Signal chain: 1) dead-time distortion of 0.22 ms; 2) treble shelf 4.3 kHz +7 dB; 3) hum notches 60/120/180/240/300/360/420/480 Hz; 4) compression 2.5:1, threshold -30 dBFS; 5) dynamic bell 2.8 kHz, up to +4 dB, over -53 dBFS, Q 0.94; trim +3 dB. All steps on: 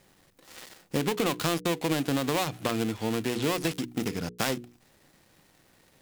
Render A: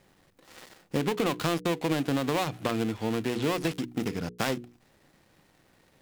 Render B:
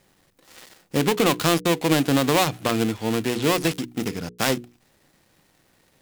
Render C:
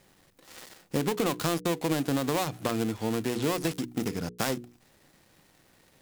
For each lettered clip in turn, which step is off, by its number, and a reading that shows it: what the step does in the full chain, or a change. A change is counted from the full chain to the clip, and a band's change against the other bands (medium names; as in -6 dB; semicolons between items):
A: 2, 8 kHz band -5.0 dB; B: 4, mean gain reduction 5.0 dB; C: 5, 4 kHz band -2.5 dB